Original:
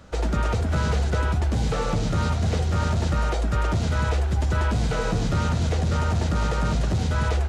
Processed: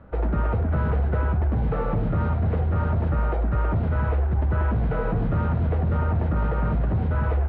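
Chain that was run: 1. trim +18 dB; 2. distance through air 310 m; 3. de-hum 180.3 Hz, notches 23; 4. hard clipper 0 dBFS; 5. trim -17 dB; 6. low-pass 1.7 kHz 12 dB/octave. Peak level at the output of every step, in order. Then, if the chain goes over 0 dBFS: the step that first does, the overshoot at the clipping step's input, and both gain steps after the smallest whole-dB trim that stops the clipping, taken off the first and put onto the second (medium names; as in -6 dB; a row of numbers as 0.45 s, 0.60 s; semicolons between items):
+6.0 dBFS, +5.0 dBFS, +5.0 dBFS, 0.0 dBFS, -17.0 dBFS, -16.5 dBFS; step 1, 5.0 dB; step 1 +13 dB, step 5 -12 dB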